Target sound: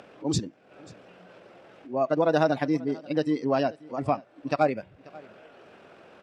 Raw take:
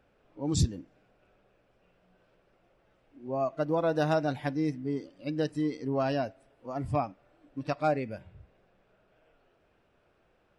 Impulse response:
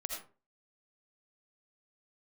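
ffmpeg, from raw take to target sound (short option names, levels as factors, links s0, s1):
-filter_complex "[0:a]acompressor=mode=upward:threshold=0.00794:ratio=2.5,atempo=1.7,highpass=180,lowpass=7800,asplit=2[s0][s1];[s1]aecho=0:1:537:0.075[s2];[s0][s2]amix=inputs=2:normalize=0,volume=1.88"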